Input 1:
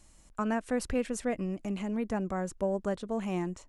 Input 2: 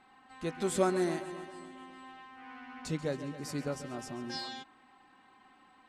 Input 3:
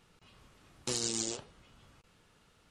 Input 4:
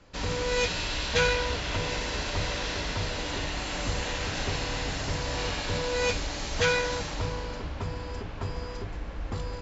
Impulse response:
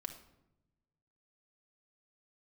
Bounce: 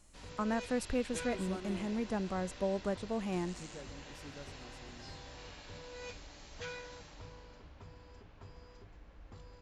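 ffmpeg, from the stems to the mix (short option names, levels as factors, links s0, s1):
-filter_complex "[0:a]volume=0.668,asplit=2[s0][s1];[1:a]adelay=700,volume=0.178[s2];[2:a]adelay=2450,volume=0.158[s3];[3:a]volume=0.106[s4];[s1]apad=whole_len=227289[s5];[s3][s5]sidechaincompress=threshold=0.0158:ratio=8:attack=16:release=1020[s6];[s0][s2][s6][s4]amix=inputs=4:normalize=0"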